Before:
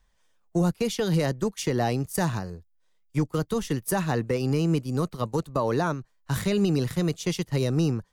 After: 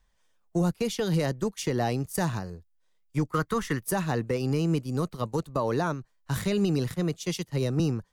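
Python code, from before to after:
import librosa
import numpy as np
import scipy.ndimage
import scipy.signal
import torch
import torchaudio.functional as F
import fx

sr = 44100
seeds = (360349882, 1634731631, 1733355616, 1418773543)

y = fx.band_shelf(x, sr, hz=1500.0, db=10.5, octaves=1.3, at=(3.3, 3.79))
y = fx.band_widen(y, sr, depth_pct=100, at=(6.94, 7.8))
y = y * librosa.db_to_amplitude(-2.0)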